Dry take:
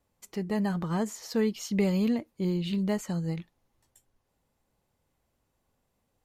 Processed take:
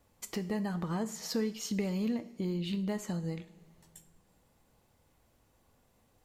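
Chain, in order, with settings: compression 2.5:1, threshold -44 dBFS, peak gain reduction 15 dB; two-slope reverb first 0.49 s, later 2.6 s, from -16 dB, DRR 10.5 dB; trim +7 dB

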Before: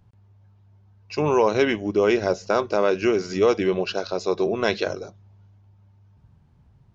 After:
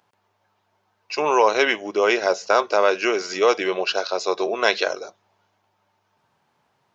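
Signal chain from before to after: high-pass 610 Hz 12 dB/octave; trim +6.5 dB

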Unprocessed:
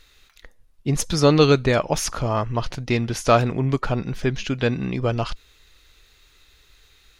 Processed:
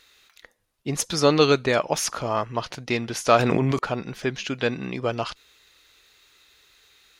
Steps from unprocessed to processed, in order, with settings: high-pass 340 Hz 6 dB/octave; 3.39–3.79 s: level flattener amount 100%

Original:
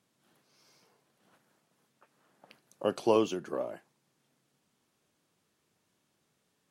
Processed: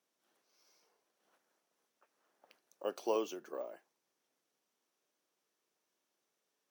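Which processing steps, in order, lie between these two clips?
Chebyshev high-pass 410 Hz, order 2; peaking EQ 5.8 kHz +7 dB 0.23 oct; careless resampling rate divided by 2×, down none, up hold; trim -7.5 dB

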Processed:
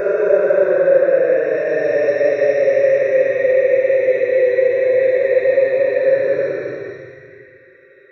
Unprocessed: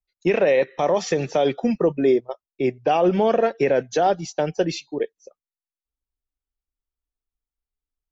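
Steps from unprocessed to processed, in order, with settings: Paulstretch 30×, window 0.05 s, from 0.41 s; static phaser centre 830 Hz, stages 6; trim +3 dB

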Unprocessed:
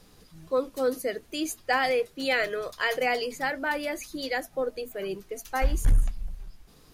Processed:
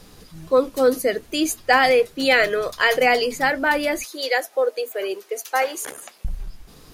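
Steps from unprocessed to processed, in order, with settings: 4.04–6.25 s: Chebyshev high-pass 420 Hz, order 3; trim +9 dB

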